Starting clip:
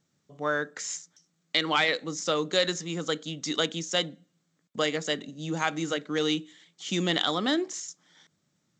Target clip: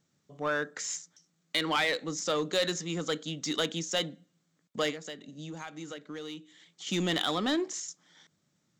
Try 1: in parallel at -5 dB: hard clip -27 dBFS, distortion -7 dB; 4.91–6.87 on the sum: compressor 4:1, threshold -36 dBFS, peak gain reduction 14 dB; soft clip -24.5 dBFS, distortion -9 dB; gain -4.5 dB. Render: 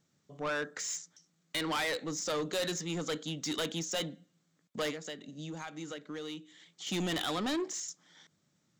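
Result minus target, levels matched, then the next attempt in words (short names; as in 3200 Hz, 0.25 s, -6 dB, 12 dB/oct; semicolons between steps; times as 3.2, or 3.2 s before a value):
soft clip: distortion +14 dB
in parallel at -5 dB: hard clip -27 dBFS, distortion -7 dB; 4.91–6.87 on the sum: compressor 4:1, threshold -36 dBFS, peak gain reduction 14 dB; soft clip -12.5 dBFS, distortion -23 dB; gain -4.5 dB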